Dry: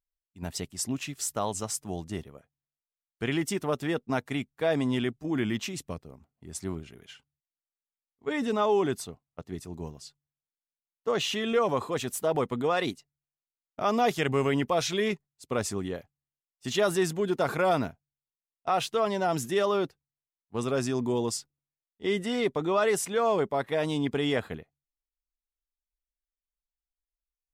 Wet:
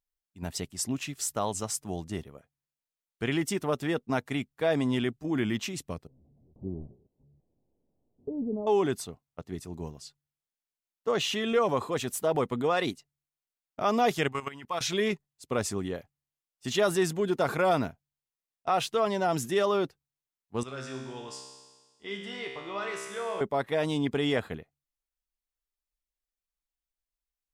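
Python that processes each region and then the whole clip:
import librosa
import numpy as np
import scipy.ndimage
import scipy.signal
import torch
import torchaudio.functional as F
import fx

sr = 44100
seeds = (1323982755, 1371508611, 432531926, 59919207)

y = fx.chain(x, sr, fx.delta_mod(bps=64000, step_db=-33.0),
    fx.gate_hold(open_db=-27.0, close_db=-34.0, hold_ms=71.0, range_db=-21, attack_ms=1.4, release_ms=100.0),
    fx.gaussian_blur(sigma=17.0), at=(6.07, 8.67))
y = fx.chain(y, sr, fx.low_shelf_res(hz=750.0, db=-7.5, q=1.5),
    fx.level_steps(step_db=15), at=(14.28, 14.81))
y = fx.chain(y, sr, fx.lowpass(hz=10000.0, slope=12),
    fx.peak_eq(hz=2300.0, db=10.0, octaves=2.8),
    fx.comb_fb(f0_hz=66.0, decay_s=1.4, harmonics='all', damping=0.0, mix_pct=90), at=(20.63, 23.41))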